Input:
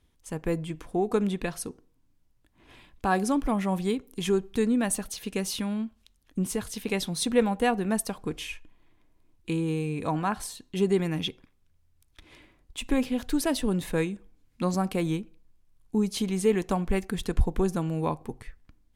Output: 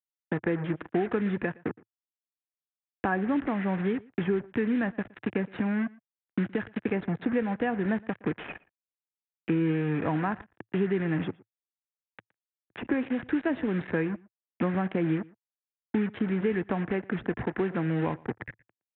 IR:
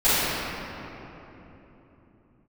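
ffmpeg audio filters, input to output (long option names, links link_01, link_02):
-filter_complex "[0:a]adynamicequalizer=threshold=0.00708:dfrequency=1800:dqfactor=1:tfrequency=1800:tqfactor=1:attack=5:release=100:ratio=0.375:range=2.5:mode=cutabove:tftype=bell,aresample=8000,acrusher=bits=5:mix=0:aa=0.5,aresample=44100,acrossover=split=140|1500[link_01][link_02][link_03];[link_01]acompressor=threshold=-44dB:ratio=4[link_04];[link_02]acompressor=threshold=-37dB:ratio=4[link_05];[link_03]acompressor=threshold=-48dB:ratio=4[link_06];[link_04][link_05][link_06]amix=inputs=3:normalize=0,highpass=110,equalizer=frequency=110:width_type=q:width=4:gain=4,equalizer=frequency=330:width_type=q:width=4:gain=4,equalizer=frequency=1100:width_type=q:width=4:gain=-3,equalizer=frequency=1700:width_type=q:width=4:gain=7,lowpass=frequency=2300:width=0.5412,lowpass=frequency=2300:width=1.3066,asplit=2[link_07][link_08];[link_08]adelay=116.6,volume=-24dB,highshelf=frequency=4000:gain=-2.62[link_09];[link_07][link_09]amix=inputs=2:normalize=0,volume=8dB"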